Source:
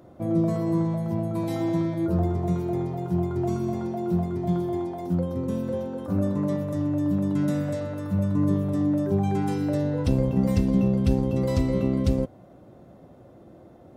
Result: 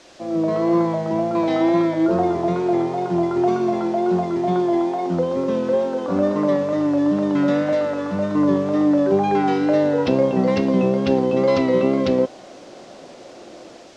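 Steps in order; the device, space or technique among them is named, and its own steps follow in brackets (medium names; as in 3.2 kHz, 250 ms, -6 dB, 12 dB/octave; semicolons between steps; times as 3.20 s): dictaphone (band-pass 370–3800 Hz; level rider gain up to 9.5 dB; wow and flutter; white noise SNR 26 dB); low-pass 6.3 kHz 24 dB/octave; trim +3 dB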